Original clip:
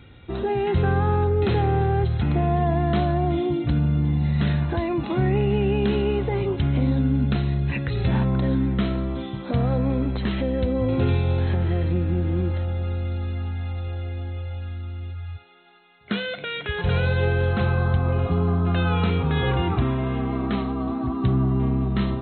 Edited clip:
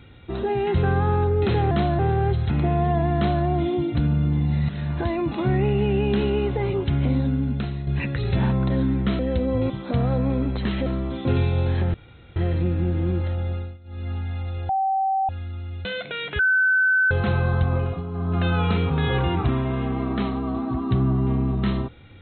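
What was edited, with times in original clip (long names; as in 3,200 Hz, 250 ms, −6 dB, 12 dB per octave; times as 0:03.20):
0:02.88–0:03.16: duplicate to 0:01.71
0:04.41–0:04.73: fade in, from −14.5 dB
0:06.79–0:07.59: fade out, to −7.5 dB
0:08.91–0:09.30: swap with 0:10.46–0:10.97
0:11.66: splice in room tone 0.42 s
0:12.81–0:13.41: duck −20.5 dB, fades 0.27 s
0:13.99–0:14.59: beep over 772 Hz −19 dBFS
0:15.15–0:16.18: remove
0:16.72–0:17.44: beep over 1,520 Hz −15.5 dBFS
0:18.08–0:18.73: duck −10 dB, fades 0.29 s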